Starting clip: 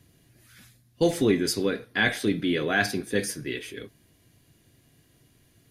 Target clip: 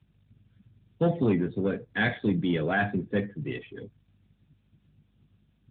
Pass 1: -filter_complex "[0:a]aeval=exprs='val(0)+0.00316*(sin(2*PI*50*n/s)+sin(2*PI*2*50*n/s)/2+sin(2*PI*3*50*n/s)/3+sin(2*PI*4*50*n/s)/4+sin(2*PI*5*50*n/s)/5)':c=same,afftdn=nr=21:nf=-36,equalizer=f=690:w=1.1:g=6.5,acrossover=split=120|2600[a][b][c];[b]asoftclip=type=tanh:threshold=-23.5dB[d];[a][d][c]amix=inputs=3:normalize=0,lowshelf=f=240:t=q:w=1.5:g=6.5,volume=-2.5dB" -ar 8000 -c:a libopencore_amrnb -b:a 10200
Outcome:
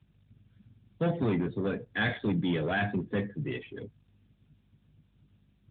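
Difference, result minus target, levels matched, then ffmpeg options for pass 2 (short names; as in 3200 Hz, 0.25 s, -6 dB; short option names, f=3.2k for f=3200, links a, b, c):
soft clip: distortion +7 dB
-filter_complex "[0:a]aeval=exprs='val(0)+0.00316*(sin(2*PI*50*n/s)+sin(2*PI*2*50*n/s)/2+sin(2*PI*3*50*n/s)/3+sin(2*PI*4*50*n/s)/4+sin(2*PI*5*50*n/s)/5)':c=same,afftdn=nr=21:nf=-36,equalizer=f=690:w=1.1:g=6.5,acrossover=split=120|2600[a][b][c];[b]asoftclip=type=tanh:threshold=-15.5dB[d];[a][d][c]amix=inputs=3:normalize=0,lowshelf=f=240:t=q:w=1.5:g=6.5,volume=-2.5dB" -ar 8000 -c:a libopencore_amrnb -b:a 10200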